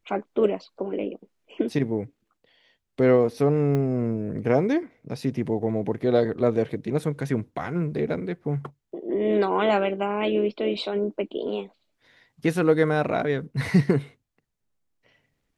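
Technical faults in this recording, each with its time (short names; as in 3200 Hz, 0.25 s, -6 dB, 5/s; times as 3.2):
3.75 pop -16 dBFS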